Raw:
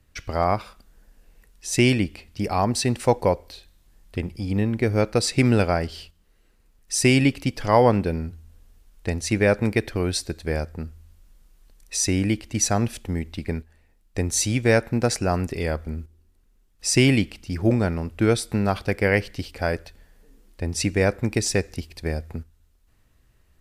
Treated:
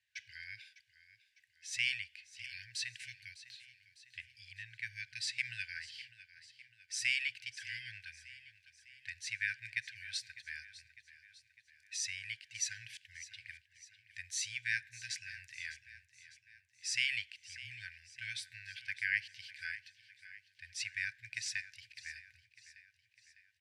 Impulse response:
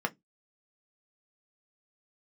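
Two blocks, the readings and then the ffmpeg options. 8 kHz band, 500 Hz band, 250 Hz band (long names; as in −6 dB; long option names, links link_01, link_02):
−15.0 dB, below −40 dB, below −40 dB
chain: -af "lowpass=2400,afftfilt=real='re*(1-between(b*sr/4096,120,1500))':imag='im*(1-between(b*sr/4096,120,1500))':win_size=4096:overlap=0.75,highpass=94,aderivative,aecho=1:1:603|1206|1809|2412|3015:0.158|0.0824|0.0429|0.0223|0.0116,volume=4.5dB"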